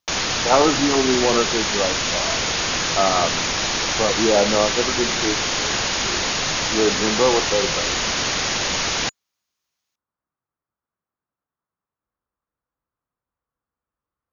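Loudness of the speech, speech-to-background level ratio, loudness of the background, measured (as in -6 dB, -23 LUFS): -22.0 LUFS, -1.5 dB, -20.5 LUFS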